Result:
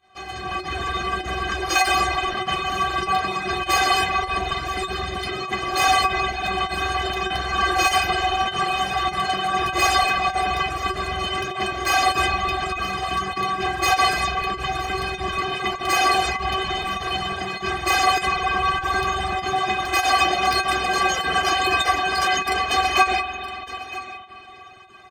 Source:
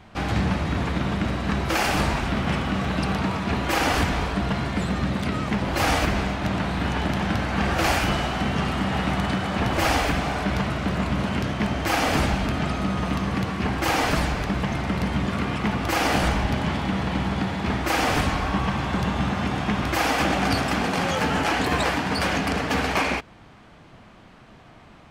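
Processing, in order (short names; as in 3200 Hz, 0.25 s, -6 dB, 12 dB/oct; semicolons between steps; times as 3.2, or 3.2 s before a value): tracing distortion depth 0.023 ms; de-hum 92.21 Hz, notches 33; on a send: echo 0.964 s -16.5 dB; on the sum: spring tank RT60 3.7 s, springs 47 ms, chirp 30 ms, DRR 4 dB; pump 99 bpm, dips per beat 1, -14 dB, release 72 ms; HPF 66 Hz; bell 12000 Hz -8.5 dB 0.21 oct; comb 1.7 ms, depth 34%; reverb removal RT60 0.83 s; low shelf 410 Hz -6.5 dB; metallic resonator 370 Hz, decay 0.21 s, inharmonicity 0.008; AGC gain up to 11 dB; gain +9 dB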